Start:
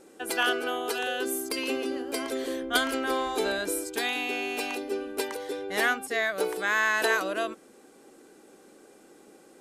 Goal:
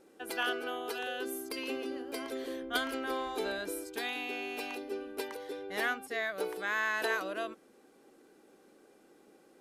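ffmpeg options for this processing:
ffmpeg -i in.wav -af "equalizer=frequency=7900:width_type=o:width=0.78:gain=-6.5,volume=-7dB" out.wav

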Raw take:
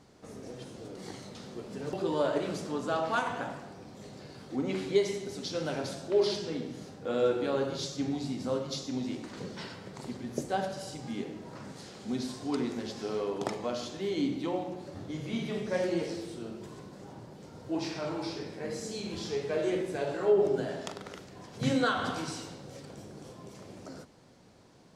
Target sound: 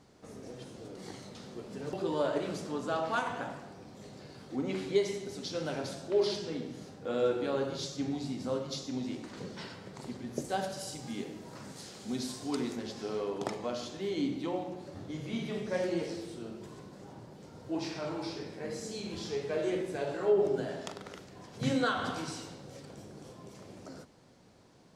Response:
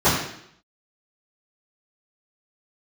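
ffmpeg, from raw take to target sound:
-filter_complex "[0:a]asettb=1/sr,asplit=3[link_01][link_02][link_03];[link_01]atrim=end=10.444[link_04];[link_02]atrim=start=10.44:end=12.76,asetpts=PTS-STARTPTS,afade=type=in:duration=0.004:curve=qsin,afade=type=out:start_time=2.316:duration=0.004:curve=qsin,aemphasis=mode=production:type=cd[link_05];[link_03]atrim=start=12.756[link_06];[link_04][link_05]acrossfade=duration=0.004:curve1=hsin:curve2=qsin[link_07];[link_07][link_06]acrossfade=duration=0.004:curve1=qsin:curve2=hsin,volume=-2dB"

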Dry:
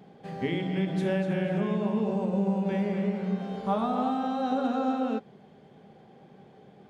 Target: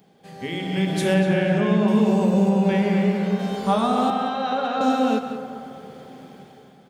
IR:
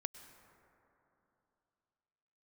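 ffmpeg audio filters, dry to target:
-filter_complex "[0:a]crystalizer=i=4:c=0,asettb=1/sr,asplit=3[link_01][link_02][link_03];[link_01]atrim=end=2.494[link_04];[link_02]atrim=start=2.49:end=3.39,asetpts=PTS-STARTPTS,afade=type=in:duration=0.004:curve=qsin,afade=type=out:start_time=0.896:duration=0.004:curve=qsin,acrossover=split=4300[link_05][link_06];[link_06]acompressor=threshold=-59dB:ratio=4:attack=1:release=60[link_07];[link_05][link_07]amix=inputs=2:normalize=0[link_08];[link_03]atrim=start=3.386[link_09];[link_04][link_08]acrossfade=duration=0.004:curve1=hsin:curve2=qsin[link_10];[link_10][link_09]acrossfade=duration=0.004:curve1=qsin:curve2=hsin,asettb=1/sr,asplit=3[link_11][link_12][link_13];[link_11]atrim=end=4.104[link_14];[link_12]atrim=start=4.1:end=4.81,asetpts=PTS-STARTPTS,afade=type=in:duration=0.004:curve=qsin,afade=type=out:start_time=0.706:duration=0.004:curve=qsin,acrossover=split=490 4000:gain=0.224 1 0.0794[link_15][link_16][link_17];[link_15][link_16][link_17]amix=inputs=3:normalize=0[link_18];[link_13]atrim=start=4.806[link_19];[link_14][link_18]acrossfade=duration=0.004:curve1=hsin:curve2=qsin[link_20];[link_20][link_19]acrossfade=duration=0.004:curve1=qsin:curve2=hsin,aecho=1:1:188:0.211,dynaudnorm=framelen=130:gausssize=11:maxgain=13dB,asettb=1/sr,asplit=3[link_21][link_22][link_23];[link_21]atrim=end=1.144[link_24];[link_22]atrim=start=1.14:end=1.88,asetpts=PTS-STARTPTS,afade=type=in:duration=0.004:curve=qsin,afade=type=out:start_time=0.736:duration=0.004:curve=qsin,aemphasis=mode=reproduction:type=50fm[link_25];[link_23]atrim=start=1.876[link_26];[link_24][link_25]acrossfade=duration=0.004:curve1=hsin:curve2=qsin[link_27];[link_27][link_26]acrossfade=duration=0.004:curve1=qsin:curve2=hsin[link_28];[1:a]atrim=start_sample=2205[link_29];[link_28][link_29]afir=irnorm=-1:irlink=0,volume=-2.5dB"

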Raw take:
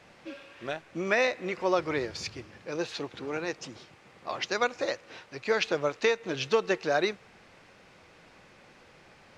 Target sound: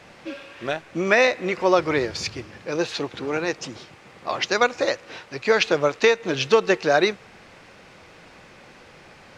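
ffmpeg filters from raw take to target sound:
ffmpeg -i in.wav -af "atempo=1,volume=8dB" out.wav

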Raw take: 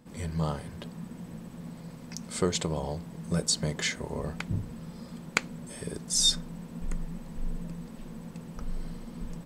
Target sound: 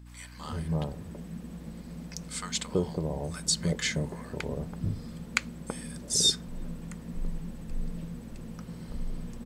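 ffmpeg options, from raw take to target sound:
ffmpeg -i in.wav -filter_complex "[0:a]acrossover=split=940[link_01][link_02];[link_01]adelay=330[link_03];[link_03][link_02]amix=inputs=2:normalize=0,aeval=exprs='val(0)+0.00447*(sin(2*PI*60*n/s)+sin(2*PI*2*60*n/s)/2+sin(2*PI*3*60*n/s)/3+sin(2*PI*4*60*n/s)/4+sin(2*PI*5*60*n/s)/5)':channel_layout=same" out.wav

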